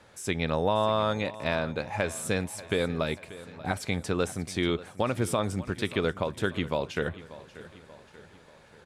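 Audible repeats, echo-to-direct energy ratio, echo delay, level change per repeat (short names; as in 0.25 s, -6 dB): 4, -15.5 dB, 0.586 s, -6.0 dB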